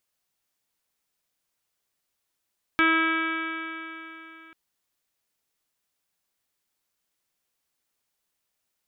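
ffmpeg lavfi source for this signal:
ffmpeg -f lavfi -i "aevalsrc='0.0708*pow(10,-3*t/3.36)*sin(2*PI*323.08*t)+0.0126*pow(10,-3*t/3.36)*sin(2*PI*646.66*t)+0.0211*pow(10,-3*t/3.36)*sin(2*PI*971.22*t)+0.075*pow(10,-3*t/3.36)*sin(2*PI*1297.26*t)+0.0794*pow(10,-3*t/3.36)*sin(2*PI*1625.26*t)+0.0158*pow(10,-3*t/3.36)*sin(2*PI*1955.71*t)+0.075*pow(10,-3*t/3.36)*sin(2*PI*2289.08*t)+0.0158*pow(10,-3*t/3.36)*sin(2*PI*2625.83*t)+0.015*pow(10,-3*t/3.36)*sin(2*PI*2966.44*t)+0.0178*pow(10,-3*t/3.36)*sin(2*PI*3311.34*t)+0.00794*pow(10,-3*t/3.36)*sin(2*PI*3660.99*t)':duration=1.74:sample_rate=44100" out.wav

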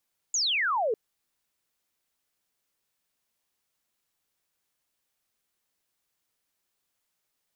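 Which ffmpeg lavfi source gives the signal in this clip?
ffmpeg -f lavfi -i "aevalsrc='0.0668*clip(t/0.002,0,1)*clip((0.6-t)/0.002,0,1)*sin(2*PI*7100*0.6/log(410/7100)*(exp(log(410/7100)*t/0.6)-1))':duration=0.6:sample_rate=44100" out.wav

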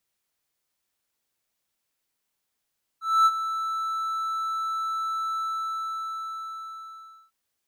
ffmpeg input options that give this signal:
ffmpeg -f lavfi -i "aevalsrc='0.251*(1-4*abs(mod(1320*t+0.25,1)-0.5))':duration=4.3:sample_rate=44100,afade=type=in:duration=0.249,afade=type=out:start_time=0.249:duration=0.044:silence=0.251,afade=type=out:start_time=2.36:duration=1.94" out.wav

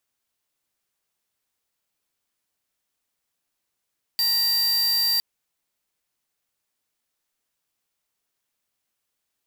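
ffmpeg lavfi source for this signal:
ffmpeg -f lavfi -i "aevalsrc='0.0841*(2*lt(mod(4690*t,1),0.5)-1)':duration=1.01:sample_rate=44100" out.wav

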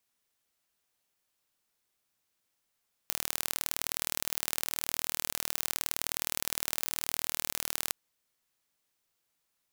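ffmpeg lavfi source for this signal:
ffmpeg -f lavfi -i "aevalsrc='0.75*eq(mod(n,1128),0)*(0.5+0.5*eq(mod(n,2256),0))':duration=4.83:sample_rate=44100" out.wav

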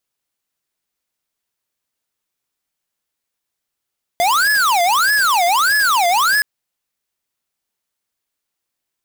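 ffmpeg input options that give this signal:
ffmpeg -f lavfi -i "aevalsrc='0.188*(2*lt(mod((1199*t-511/(2*PI*1.6)*sin(2*PI*1.6*t)),1),0.5)-1)':duration=2.22:sample_rate=44100" out.wav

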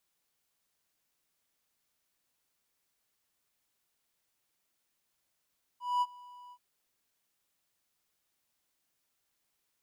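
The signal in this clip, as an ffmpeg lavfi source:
ffmpeg -f lavfi -i "aevalsrc='0.075*(1-4*abs(mod(983*t+0.25,1)-0.5))':duration=0.778:sample_rate=44100,afade=type=in:duration=0.216,afade=type=out:start_time=0.216:duration=0.041:silence=0.0631,afade=type=out:start_time=0.72:duration=0.058" out.wav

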